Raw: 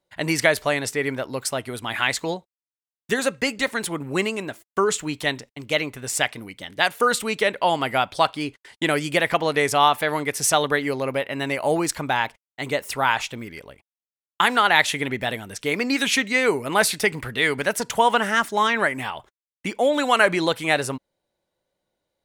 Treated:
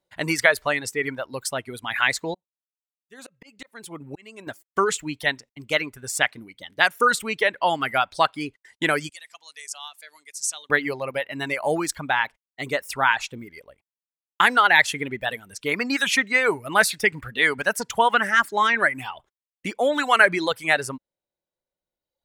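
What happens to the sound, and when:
2.34–4.47 s: slow attack 678 ms
9.09–10.70 s: band-pass filter 7 kHz, Q 1.9
whole clip: reverb removal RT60 1.4 s; dynamic bell 1.6 kHz, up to +6 dB, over -34 dBFS, Q 1.3; trim -2 dB

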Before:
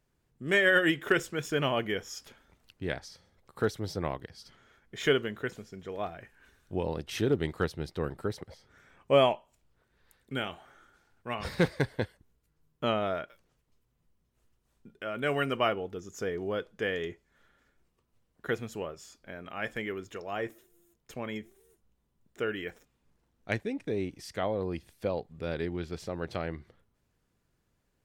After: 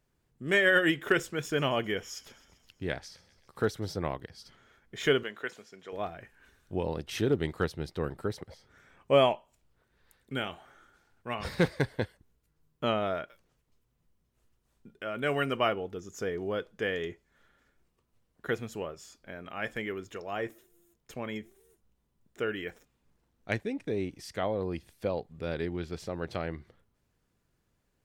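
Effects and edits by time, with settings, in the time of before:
1.45–3.93 s: feedback echo behind a high-pass 130 ms, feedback 64%, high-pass 2.7 kHz, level -18.5 dB
5.23–5.93 s: frequency weighting A

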